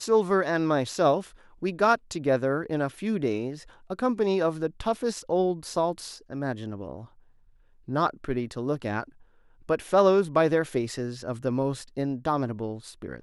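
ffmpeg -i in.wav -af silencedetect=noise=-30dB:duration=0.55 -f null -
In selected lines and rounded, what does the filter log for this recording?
silence_start: 6.94
silence_end: 7.89 | silence_duration: 0.94
silence_start: 9.03
silence_end: 9.69 | silence_duration: 0.66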